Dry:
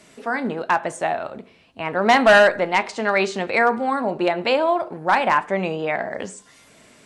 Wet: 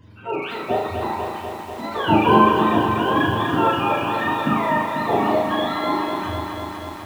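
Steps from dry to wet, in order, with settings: spectrum mirrored in octaves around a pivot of 800 Hz; flutter echo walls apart 6.3 m, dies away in 0.57 s; lo-fi delay 0.246 s, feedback 80%, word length 7-bit, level -6 dB; gain -2.5 dB

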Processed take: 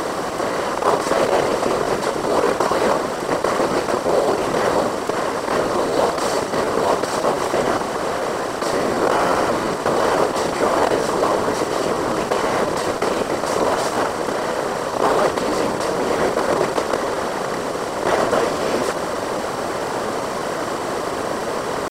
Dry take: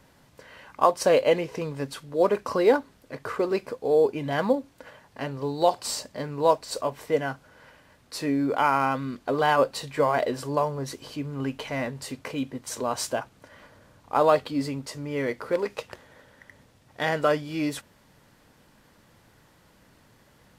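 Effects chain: per-bin compression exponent 0.2; whisperiser; tempo 0.94×; gain -5 dB

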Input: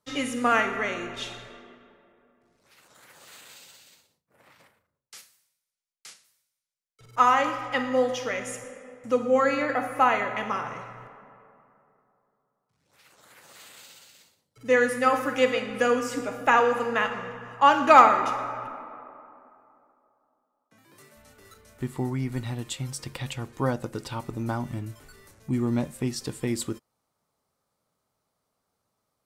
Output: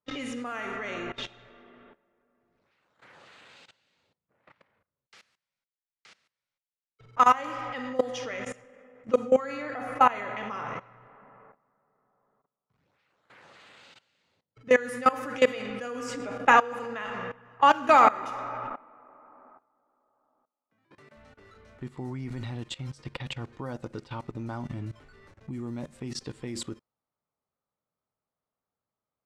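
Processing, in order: low-pass opened by the level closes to 2800 Hz, open at -18.5 dBFS; level quantiser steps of 19 dB; gain +3 dB

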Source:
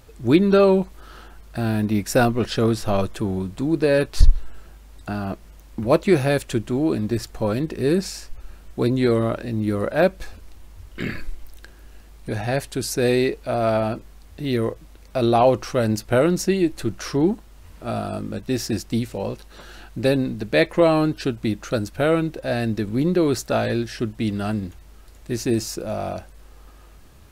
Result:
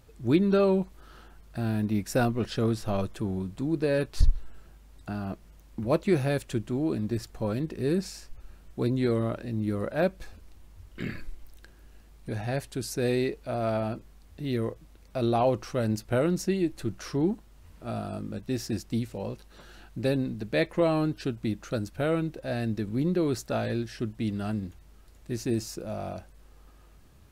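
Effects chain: bell 140 Hz +4 dB 2.1 oct; gain -9 dB

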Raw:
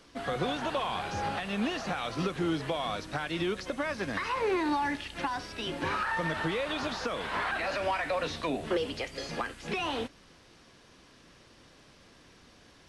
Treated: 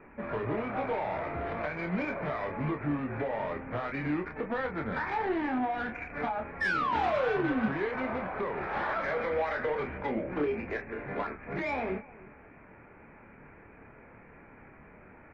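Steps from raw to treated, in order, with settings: in parallel at 0 dB: compressor 5:1, threshold -44 dBFS, peak gain reduction 17 dB; on the sum: painted sound fall, 5.55–6.47, 230–2200 Hz -26 dBFS; rippled Chebyshev low-pass 2900 Hz, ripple 3 dB; on a send: feedback echo 0.26 s, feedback 27%, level -21.5 dB; on the sum: soft clip -25.5 dBFS, distortion -15 dB; varispeed -16%; doubler 27 ms -5 dB; AAC 32 kbps 48000 Hz

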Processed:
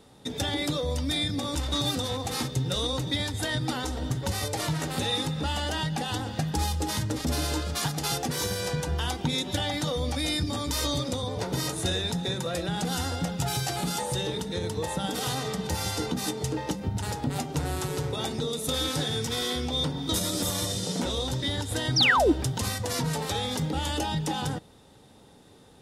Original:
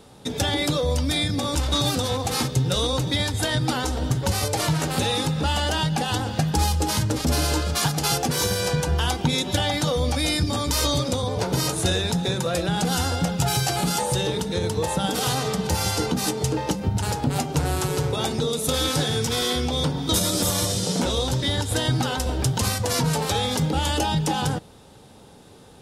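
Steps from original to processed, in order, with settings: bell 280 Hz -6 dB 0.44 oct; painted sound fall, 21.96–22.32, 280–6100 Hz -15 dBFS; small resonant body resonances 280/1900/3600 Hz, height 9 dB, ringing for 45 ms; gain -6.5 dB

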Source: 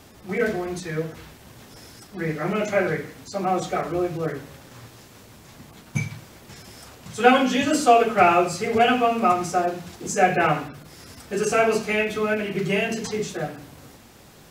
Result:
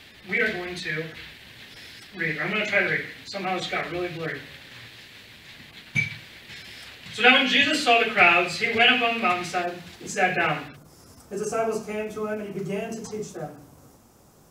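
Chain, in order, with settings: band shelf 2700 Hz +14.5 dB, from 9.62 s +8 dB, from 10.75 s -8.5 dB; gain -5.5 dB

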